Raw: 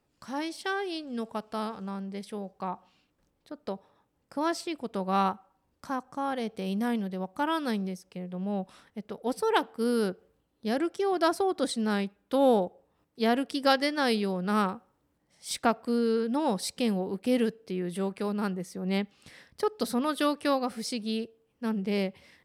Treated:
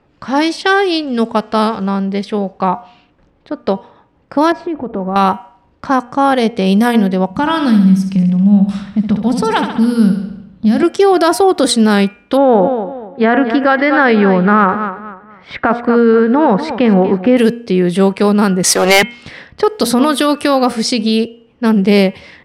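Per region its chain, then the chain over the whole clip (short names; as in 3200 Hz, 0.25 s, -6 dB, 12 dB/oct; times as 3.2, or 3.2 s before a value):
4.52–5.16 G.711 law mismatch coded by mu + LPF 1000 Hz + compressor 3:1, threshold -38 dBFS
7.3–10.83 resonant low shelf 270 Hz +9.5 dB, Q 3 + compressor 3:1, threshold -32 dBFS + feedback echo 68 ms, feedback 59%, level -8 dB
12.37–17.37 synth low-pass 1700 Hz, resonance Q 1.9 + feedback echo 0.24 s, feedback 30%, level -15.5 dB
18.63–19.03 HPF 770 Hz + sample leveller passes 5
whole clip: low-pass opened by the level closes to 2700 Hz, open at -25 dBFS; de-hum 239 Hz, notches 13; maximiser +21 dB; gain -1 dB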